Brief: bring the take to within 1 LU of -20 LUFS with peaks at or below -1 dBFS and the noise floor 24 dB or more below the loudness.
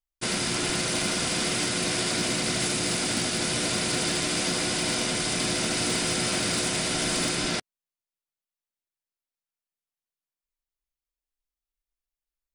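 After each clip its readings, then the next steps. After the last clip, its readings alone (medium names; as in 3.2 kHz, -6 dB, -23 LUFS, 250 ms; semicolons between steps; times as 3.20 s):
clipped samples 0.1%; clipping level -19.0 dBFS; loudness -25.0 LUFS; peak level -19.0 dBFS; loudness target -20.0 LUFS
-> clip repair -19 dBFS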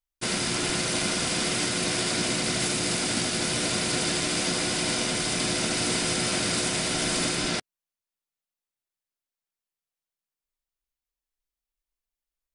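clipped samples 0.0%; loudness -25.0 LUFS; peak level -13.0 dBFS; loudness target -20.0 LUFS
-> trim +5 dB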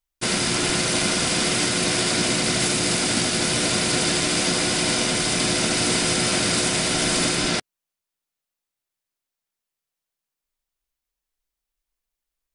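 loudness -20.0 LUFS; peak level -8.0 dBFS; noise floor -86 dBFS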